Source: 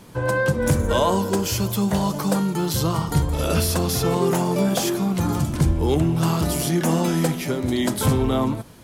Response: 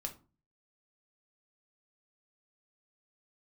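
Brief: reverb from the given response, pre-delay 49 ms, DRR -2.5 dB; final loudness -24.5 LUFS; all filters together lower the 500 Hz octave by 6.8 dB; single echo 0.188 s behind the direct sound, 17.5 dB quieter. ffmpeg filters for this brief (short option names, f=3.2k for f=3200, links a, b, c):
-filter_complex "[0:a]equalizer=f=500:t=o:g=-9,aecho=1:1:188:0.133,asplit=2[a][b];[1:a]atrim=start_sample=2205,adelay=49[c];[b][c]afir=irnorm=-1:irlink=0,volume=4dB[d];[a][d]amix=inputs=2:normalize=0,volume=-7dB"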